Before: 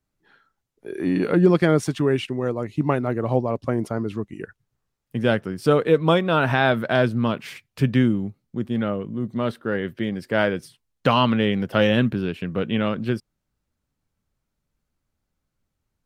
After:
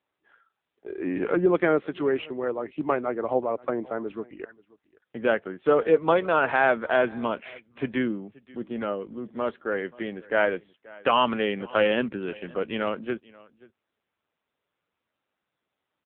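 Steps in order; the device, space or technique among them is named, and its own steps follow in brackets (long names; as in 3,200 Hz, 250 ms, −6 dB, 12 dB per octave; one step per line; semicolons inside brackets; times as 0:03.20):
satellite phone (band-pass filter 370–3,200 Hz; single-tap delay 531 ms −23 dB; AMR narrowband 6.7 kbit/s 8,000 Hz)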